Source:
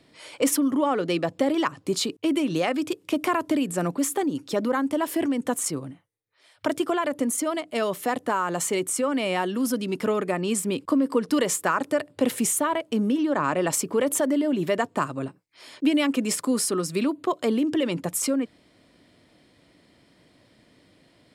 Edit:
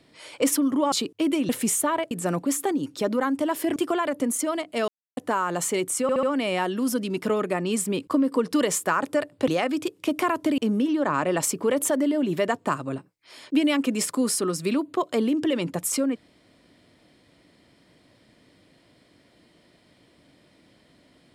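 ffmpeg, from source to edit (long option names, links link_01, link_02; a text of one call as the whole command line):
ffmpeg -i in.wav -filter_complex "[0:a]asplit=12[link_01][link_02][link_03][link_04][link_05][link_06][link_07][link_08][link_09][link_10][link_11][link_12];[link_01]atrim=end=0.922[link_13];[link_02]atrim=start=1.958:end=2.532[link_14];[link_03]atrim=start=12.258:end=12.882[link_15];[link_04]atrim=start=3.628:end=5.282[link_16];[link_05]atrim=start=6.748:end=7.87,asetpts=PTS-STARTPTS,afade=type=out:start_time=1.118:duration=0.004:curve=hsin[link_17];[link_06]atrim=start=7.87:end=8.16,asetpts=PTS-STARTPTS,volume=0[link_18];[link_07]atrim=start=8.16:end=9.082,asetpts=PTS-STARTPTS,afade=type=in:duration=0.004:curve=hsin[link_19];[link_08]atrim=start=9.008:end=9.082[link_20];[link_09]atrim=start=9.008:end=9.082[link_21];[link_10]atrim=start=9.008:end=12.262[link_22];[link_11]atrim=start=2.528:end=3.632[link_23];[link_12]atrim=start=12.878[link_24];[link_13][link_14]acrossfade=duration=0.004:curve1=hsin:curve2=hsin[link_25];[link_25][link_15]acrossfade=duration=0.004:curve1=hsin:curve2=hsin[link_26];[link_26][link_16]acrossfade=duration=0.004:curve1=hsin:curve2=hsin[link_27];[link_17][link_18][link_19]concat=n=3:v=0:a=1[link_28];[link_27][link_28]acrossfade=duration=0.004:curve1=hsin:curve2=hsin[link_29];[link_29][link_20]acrossfade=duration=0.004:curve1=hsin:curve2=hsin[link_30];[link_30][link_21]acrossfade=duration=0.004:curve1=hsin:curve2=hsin[link_31];[link_31][link_22]acrossfade=duration=0.004:curve1=hsin:curve2=hsin[link_32];[link_32][link_23]acrossfade=duration=0.004:curve1=hsin:curve2=hsin[link_33];[link_33][link_24]acrossfade=duration=0.004:curve1=hsin:curve2=hsin" out.wav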